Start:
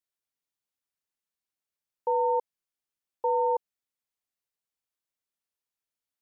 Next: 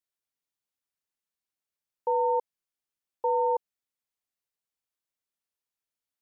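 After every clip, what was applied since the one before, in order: no audible change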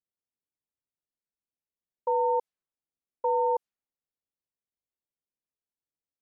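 level-controlled noise filter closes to 540 Hz, open at -24.5 dBFS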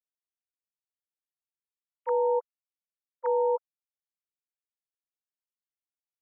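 formants replaced by sine waves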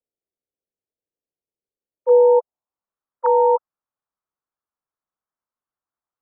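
local Wiener filter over 9 samples; low-pass sweep 480 Hz -> 1.2 kHz, 1.94–2.92 s; trim +7.5 dB

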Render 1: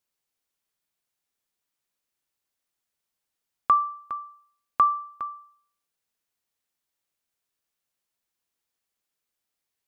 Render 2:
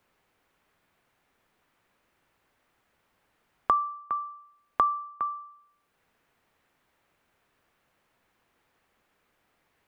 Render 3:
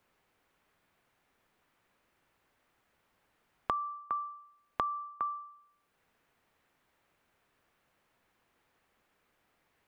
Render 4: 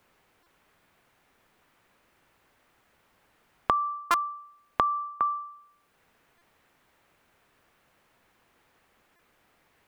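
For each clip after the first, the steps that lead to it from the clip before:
three bands compressed up and down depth 70%
compression 5:1, threshold -27 dBFS, peak gain reduction 8 dB; trim -2.5 dB
buffer glitch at 0.43/4.11/6.38/9.16 s, samples 128, times 10; trim +8 dB

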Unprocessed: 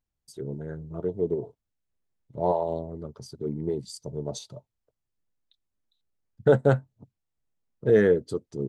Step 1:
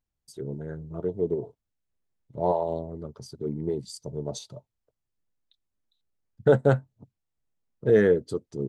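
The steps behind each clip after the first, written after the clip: no audible change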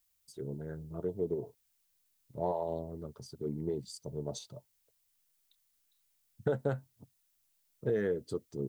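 compression, threshold -22 dBFS, peak gain reduction 8.5 dB; added noise blue -70 dBFS; trim -5.5 dB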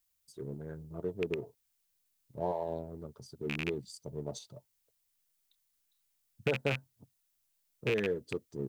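rattle on loud lows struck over -35 dBFS, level -21 dBFS; in parallel at -11 dB: crossover distortion -41.5 dBFS; on the sum: trim -2.5 dB

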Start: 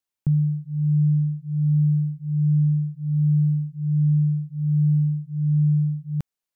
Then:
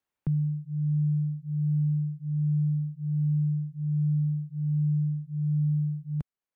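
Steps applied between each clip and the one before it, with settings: three bands compressed up and down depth 40%; trim -6.5 dB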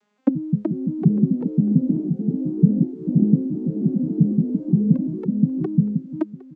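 vocoder on a broken chord major triad, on G#3, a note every 175 ms; delay 904 ms -18 dB; ever faster or slower copies 421 ms, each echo +3 st, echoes 3, each echo -6 dB; trim +8 dB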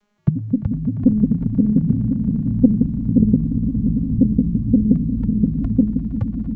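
frequency shift -420 Hz; echo with a slow build-up 116 ms, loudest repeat 8, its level -13 dB; loudspeaker Doppler distortion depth 0.24 ms; trim +2 dB

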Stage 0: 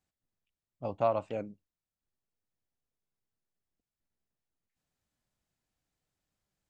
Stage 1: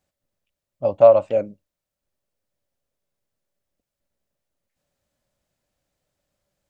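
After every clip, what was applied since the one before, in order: peaking EQ 570 Hz +13.5 dB 0.26 oct; trim +7 dB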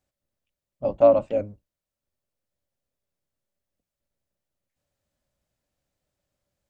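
octave divider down 1 oct, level -2 dB; trim -4.5 dB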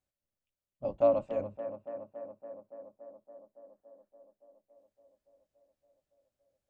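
time-frequency box 3.55–4.08 s, 710–1900 Hz +12 dB; tape echo 283 ms, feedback 83%, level -10 dB, low-pass 2.1 kHz; trim -9 dB

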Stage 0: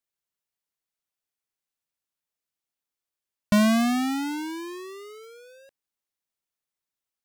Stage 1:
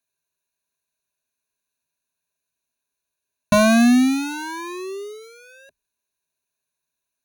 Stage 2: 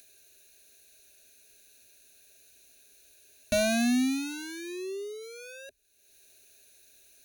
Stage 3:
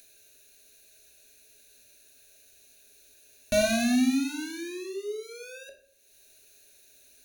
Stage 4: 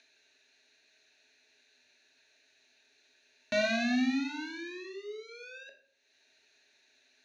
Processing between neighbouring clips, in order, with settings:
rippled EQ curve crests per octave 1.5, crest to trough 14 dB; trim +4 dB
static phaser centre 420 Hz, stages 4; upward compressor, threshold -29 dBFS; trim -5.5 dB
simulated room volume 72 m³, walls mixed, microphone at 0.51 m
cabinet simulation 210–5000 Hz, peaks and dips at 390 Hz -4 dB, 560 Hz -7 dB, 880 Hz +9 dB, 1.9 kHz +9 dB; trim -3.5 dB

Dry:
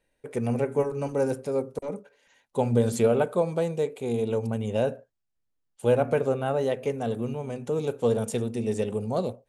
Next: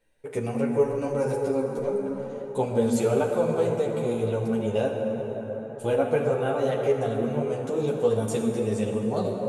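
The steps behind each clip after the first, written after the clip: plate-style reverb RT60 4.6 s, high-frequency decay 0.45×, DRR 2 dB; in parallel at -2 dB: compression, threshold -29 dBFS, peak gain reduction 12.5 dB; on the sum: three-phase chorus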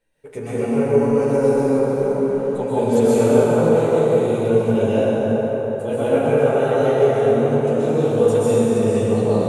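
plate-style reverb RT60 3.2 s, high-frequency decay 0.6×, pre-delay 115 ms, DRR -9.5 dB; trim -2.5 dB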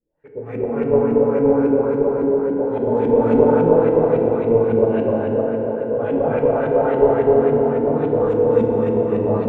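LFO low-pass saw up 3.6 Hz 240–2400 Hz; Chebyshev shaper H 2 -14 dB, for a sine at 1.5 dBFS; FDN reverb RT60 3 s, high-frequency decay 1×, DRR 1.5 dB; trim -5.5 dB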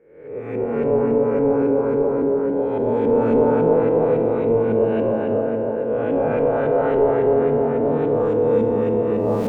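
reverse spectral sustain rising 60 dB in 0.73 s; hum notches 50/100 Hz; in parallel at -2 dB: peak limiter -10 dBFS, peak gain reduction 10 dB; on the sum: trim -7.5 dB

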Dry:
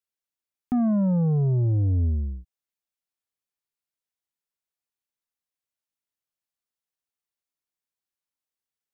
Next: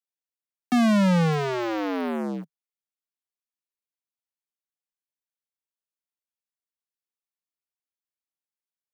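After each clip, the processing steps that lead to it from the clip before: waveshaping leveller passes 5; steep high-pass 160 Hz 72 dB/octave; trim +1.5 dB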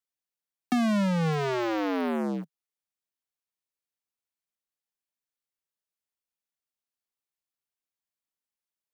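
compression, threshold -22 dBFS, peak gain reduction 6.5 dB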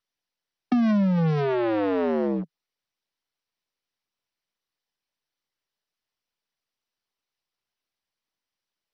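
resonances exaggerated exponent 1.5; in parallel at -4.5 dB: overload inside the chain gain 34.5 dB; on the sum: trim +2.5 dB; MP2 48 kbps 32 kHz

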